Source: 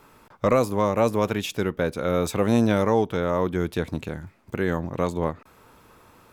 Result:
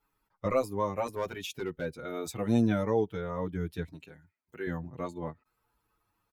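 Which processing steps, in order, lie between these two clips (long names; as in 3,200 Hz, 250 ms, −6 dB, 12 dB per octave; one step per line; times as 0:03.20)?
spectral dynamics exaggerated over time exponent 1.5
0:01.06–0:01.85: gain into a clipping stage and back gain 19 dB
0:03.92–0:04.67: high-pass filter 480 Hz 6 dB per octave
barber-pole flanger 6.8 ms −0.32 Hz
level −3.5 dB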